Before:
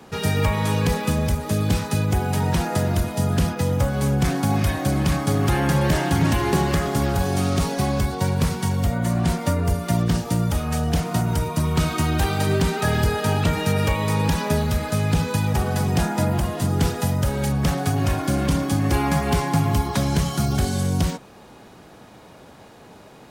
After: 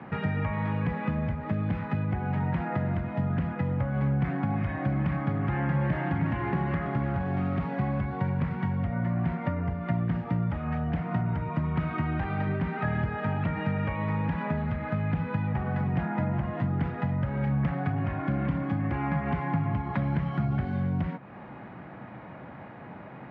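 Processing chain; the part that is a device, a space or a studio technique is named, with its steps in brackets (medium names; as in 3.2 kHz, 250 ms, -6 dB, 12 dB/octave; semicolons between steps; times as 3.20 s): bass amplifier (compression 3:1, threshold -32 dBFS, peak gain reduction 12.5 dB; cabinet simulation 79–2200 Hz, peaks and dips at 130 Hz +5 dB, 190 Hz +3 dB, 430 Hz -8 dB, 2 kHz +4 dB); trim +2.5 dB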